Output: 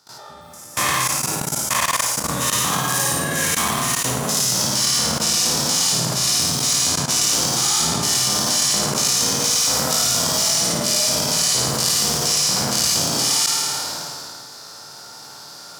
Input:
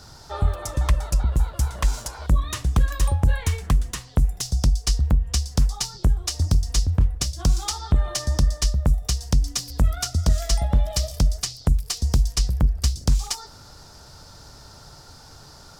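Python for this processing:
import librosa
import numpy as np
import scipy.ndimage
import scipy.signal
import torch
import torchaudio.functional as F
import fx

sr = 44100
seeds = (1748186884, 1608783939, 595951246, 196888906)

p1 = fx.spec_dilate(x, sr, span_ms=240)
p2 = scipy.signal.sosfilt(scipy.signal.butter(4, 130.0, 'highpass', fs=sr, output='sos'), p1)
p3 = fx.high_shelf(p2, sr, hz=9600.0, db=5.5)
p4 = fx.hum_notches(p3, sr, base_hz=60, count=3)
p5 = p4 + fx.room_flutter(p4, sr, wall_m=9.3, rt60_s=1.0, dry=0)
p6 = fx.level_steps(p5, sr, step_db=20)
p7 = fx.low_shelf(p6, sr, hz=380.0, db=-10.5)
p8 = fx.sustainer(p7, sr, db_per_s=20.0)
y = p8 * librosa.db_to_amplitude(2.0)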